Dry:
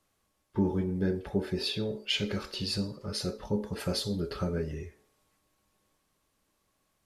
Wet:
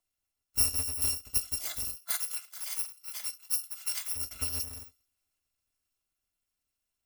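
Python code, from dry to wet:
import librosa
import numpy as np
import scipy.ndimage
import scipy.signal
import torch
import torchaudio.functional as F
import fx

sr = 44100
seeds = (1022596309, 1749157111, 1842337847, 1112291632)

y = fx.bit_reversed(x, sr, seeds[0], block=256)
y = fx.highpass(y, sr, hz=840.0, slope=24, at=(1.95, 4.15), fade=0.02)
y = fx.upward_expand(y, sr, threshold_db=-46.0, expansion=1.5)
y = y * librosa.db_to_amplitude(1.0)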